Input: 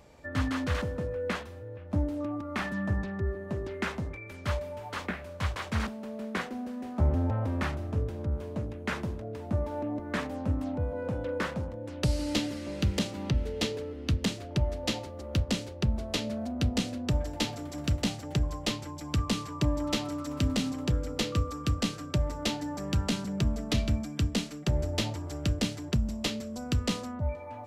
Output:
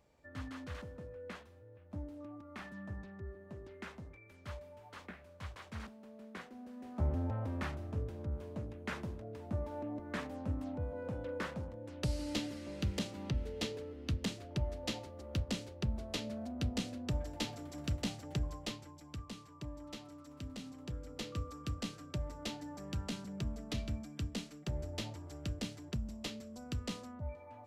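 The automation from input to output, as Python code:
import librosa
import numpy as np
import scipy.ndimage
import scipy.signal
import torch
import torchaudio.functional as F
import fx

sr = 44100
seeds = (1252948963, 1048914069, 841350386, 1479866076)

y = fx.gain(x, sr, db=fx.line((6.51, -15.0), (7.01, -8.0), (18.47, -8.0), (19.27, -18.0), (20.5, -18.0), (21.44, -11.0)))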